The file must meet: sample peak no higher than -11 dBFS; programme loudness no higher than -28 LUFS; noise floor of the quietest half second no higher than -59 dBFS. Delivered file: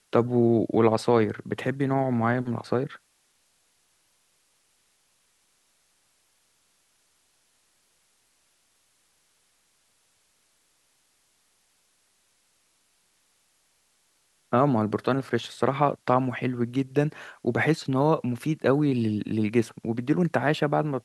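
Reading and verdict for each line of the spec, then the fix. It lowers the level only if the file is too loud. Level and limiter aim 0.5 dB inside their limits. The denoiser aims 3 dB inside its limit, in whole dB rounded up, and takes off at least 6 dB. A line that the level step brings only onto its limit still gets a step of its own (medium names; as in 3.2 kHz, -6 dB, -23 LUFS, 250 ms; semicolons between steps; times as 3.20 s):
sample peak -7.5 dBFS: fail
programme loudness -25.5 LUFS: fail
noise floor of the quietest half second -68 dBFS: pass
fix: trim -3 dB; peak limiter -11.5 dBFS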